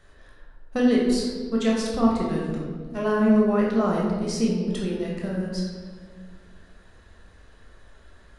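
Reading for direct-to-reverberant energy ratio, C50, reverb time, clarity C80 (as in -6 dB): -4.0 dB, 1.0 dB, 1.6 s, 3.5 dB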